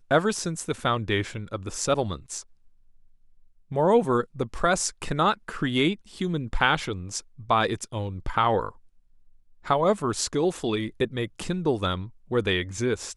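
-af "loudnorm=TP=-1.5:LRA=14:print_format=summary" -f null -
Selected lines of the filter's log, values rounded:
Input Integrated:    -26.5 LUFS
Input True Peak:      -4.7 dBTP
Input LRA:             2.2 LU
Input Threshold:     -36.7 LUFS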